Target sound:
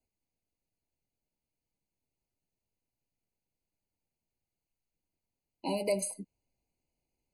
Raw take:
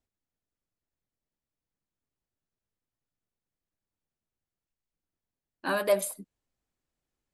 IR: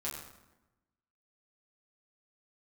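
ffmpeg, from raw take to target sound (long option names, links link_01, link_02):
-filter_complex "[0:a]acrossover=split=330|3000[link_01][link_02][link_03];[link_02]acompressor=threshold=-34dB:ratio=3[link_04];[link_01][link_04][link_03]amix=inputs=3:normalize=0,adynamicequalizer=threshold=0.00282:dfrequency=100:dqfactor=1.5:tfrequency=100:tqfactor=1.5:attack=5:release=100:ratio=0.375:range=2.5:mode=boostabove:tftype=bell,afftfilt=real='re*eq(mod(floor(b*sr/1024/1000),2),0)':imag='im*eq(mod(floor(b*sr/1024/1000),2),0)':win_size=1024:overlap=0.75,volume=1.5dB"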